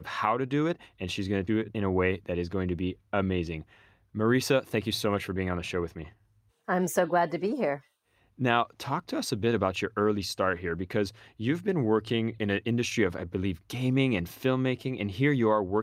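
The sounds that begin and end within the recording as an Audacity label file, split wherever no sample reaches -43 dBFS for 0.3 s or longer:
4.150000	6.090000	sound
6.680000	7.790000	sound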